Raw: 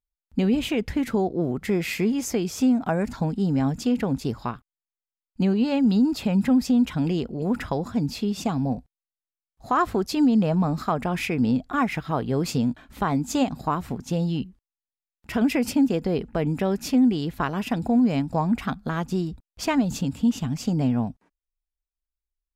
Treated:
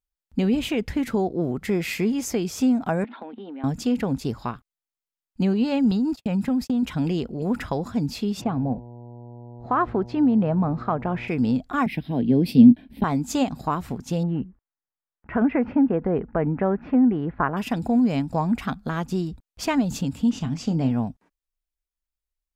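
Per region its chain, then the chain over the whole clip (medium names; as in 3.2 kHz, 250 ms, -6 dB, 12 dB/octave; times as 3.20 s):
3.04–3.64 s: Chebyshev band-pass 220–3600 Hz, order 5 + compression, threshold -30 dBFS + bass shelf 340 Hz -7 dB
5.91–6.83 s: gate -31 dBFS, range -59 dB + compression, threshold -19 dBFS
8.40–11.27 s: low-pass 1.9 kHz + mains buzz 120 Hz, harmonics 8, -41 dBFS -6 dB/octave
11.86–13.04 s: peaking EQ 240 Hz +12.5 dB 0.8 oct + static phaser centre 3 kHz, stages 4 + three bands expanded up and down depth 40%
14.23–17.57 s: low-pass 1.8 kHz 24 dB/octave + peaking EQ 1.3 kHz +4 dB 2.8 oct
20.30–20.91 s: low-pass 6.6 kHz + doubling 30 ms -12 dB
whole clip: none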